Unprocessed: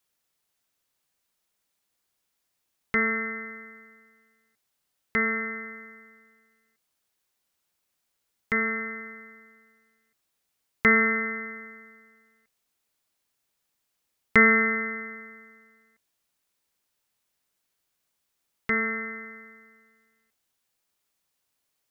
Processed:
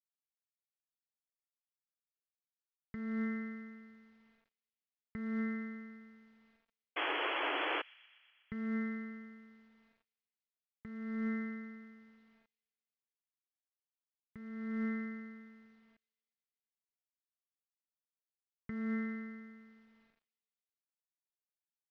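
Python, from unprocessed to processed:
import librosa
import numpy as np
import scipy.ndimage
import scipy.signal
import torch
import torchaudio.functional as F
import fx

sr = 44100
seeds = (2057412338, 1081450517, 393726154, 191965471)

y = fx.highpass(x, sr, hz=42.0, slope=6)
y = fx.notch(y, sr, hz=2600.0, q=6.0)
y = fx.env_lowpass_down(y, sr, base_hz=1600.0, full_db=-24.0)
y = fx.curve_eq(y, sr, hz=(270.0, 400.0, 980.0, 1500.0), db=(0, -11, -15, -14))
y = fx.over_compress(y, sr, threshold_db=-38.0, ratio=-1.0)
y = fx.spec_paint(y, sr, seeds[0], shape='noise', start_s=6.96, length_s=0.86, low_hz=280.0, high_hz=3400.0, level_db=-33.0)
y = fx.quant_companded(y, sr, bits=6)
y = fx.air_absorb(y, sr, metres=270.0)
y = fx.echo_wet_highpass(y, sr, ms=122, feedback_pct=73, hz=3100.0, wet_db=-18.0)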